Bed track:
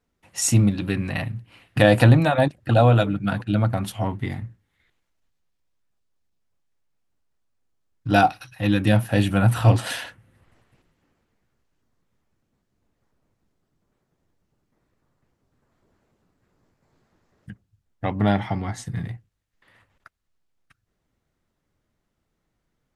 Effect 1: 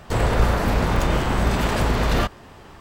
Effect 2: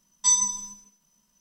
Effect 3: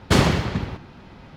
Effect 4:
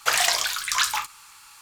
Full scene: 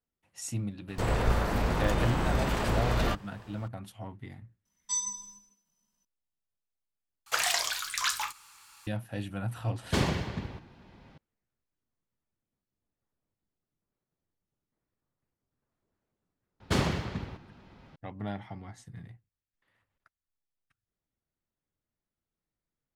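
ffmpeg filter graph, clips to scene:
ffmpeg -i bed.wav -i cue0.wav -i cue1.wav -i cue2.wav -i cue3.wav -filter_complex "[3:a]asplit=2[link_01][link_02];[0:a]volume=-16.5dB[link_03];[link_01]bandreject=frequency=1300:width=12[link_04];[link_03]asplit=2[link_05][link_06];[link_05]atrim=end=7.264[link_07];[4:a]atrim=end=1.61,asetpts=PTS-STARTPTS,volume=-7dB[link_08];[link_06]atrim=start=8.866[link_09];[1:a]atrim=end=2.8,asetpts=PTS-STARTPTS,volume=-8dB,afade=type=in:duration=0.004:curve=hsin,afade=type=out:start_time=2.796:duration=0.004:curve=hsin,adelay=880[link_10];[2:a]atrim=end=1.4,asetpts=PTS-STARTPTS,volume=-11dB,afade=type=in:duration=0.004:curve=hsin,afade=type=out:start_time=1.396:duration=0.004:curve=hsin,adelay=205065S[link_11];[link_04]atrim=end=1.36,asetpts=PTS-STARTPTS,volume=-10.5dB,afade=type=in:duration=0.004:curve=hsin,afade=type=out:start_time=1.356:duration=0.004:curve=hsin,adelay=9820[link_12];[link_02]atrim=end=1.36,asetpts=PTS-STARTPTS,volume=-10.5dB,afade=type=in:duration=0.004:curve=hsin,afade=type=out:start_time=1.356:duration=0.004:curve=hsin,adelay=16600[link_13];[link_07][link_08]acrossfade=duration=0.004:curve1=hsin:curve2=hsin[link_14];[link_14][link_09]acrossfade=duration=0.004:curve1=hsin:curve2=hsin[link_15];[link_15][link_10][link_11][link_12][link_13]amix=inputs=5:normalize=0" out.wav

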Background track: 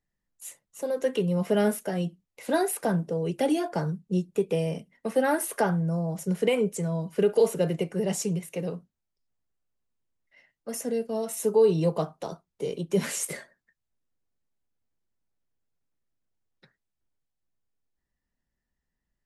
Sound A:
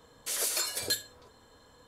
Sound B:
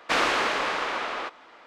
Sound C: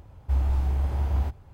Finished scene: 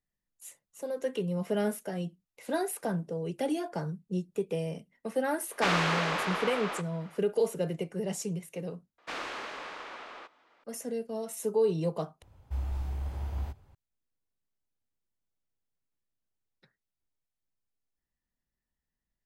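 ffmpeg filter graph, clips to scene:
ffmpeg -i bed.wav -i cue0.wav -i cue1.wav -i cue2.wav -filter_complex "[2:a]asplit=2[link_01][link_02];[0:a]volume=-6dB[link_03];[3:a]highshelf=frequency=2100:gain=5[link_04];[link_03]asplit=3[link_05][link_06][link_07];[link_05]atrim=end=8.984[link_08];[link_02]atrim=end=1.66,asetpts=PTS-STARTPTS,volume=-14.5dB[link_09];[link_06]atrim=start=10.636:end=12.224[link_10];[link_04]atrim=end=1.53,asetpts=PTS-STARTPTS,volume=-9.5dB[link_11];[link_07]atrim=start=13.746[link_12];[link_01]atrim=end=1.66,asetpts=PTS-STARTPTS,volume=-4.5dB,afade=type=in:duration=0.004:curve=hsin,afade=type=out:start_time=1.656:duration=0.004:curve=hsin,adelay=5520[link_13];[link_08][link_09]acrossfade=duration=0.004:curve1=hsin:curve2=hsin[link_14];[link_14][link_10]acrossfade=duration=0.004:curve1=hsin:curve2=hsin[link_15];[link_15][link_11]acrossfade=duration=0.004:curve1=hsin:curve2=hsin[link_16];[link_16][link_12]acrossfade=duration=0.004:curve1=hsin:curve2=hsin[link_17];[link_17][link_13]amix=inputs=2:normalize=0" out.wav

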